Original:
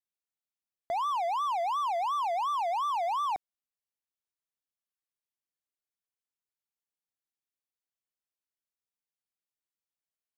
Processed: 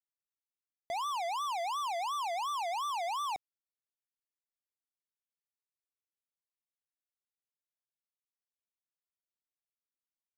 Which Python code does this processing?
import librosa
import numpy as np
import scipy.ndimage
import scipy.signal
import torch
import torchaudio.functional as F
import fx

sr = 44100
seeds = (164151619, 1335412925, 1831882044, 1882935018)

y = fx.leveller(x, sr, passes=5)
y = y * librosa.db_to_amplitude(-8.5)